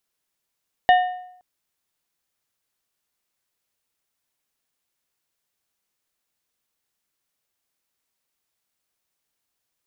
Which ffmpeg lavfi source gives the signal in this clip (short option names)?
-f lavfi -i "aevalsrc='0.355*pow(10,-3*t/0.72)*sin(2*PI*729*t)+0.141*pow(10,-3*t/0.547)*sin(2*PI*1822.5*t)+0.0562*pow(10,-3*t/0.475)*sin(2*PI*2916*t)+0.0224*pow(10,-3*t/0.444)*sin(2*PI*3645*t)':d=0.52:s=44100"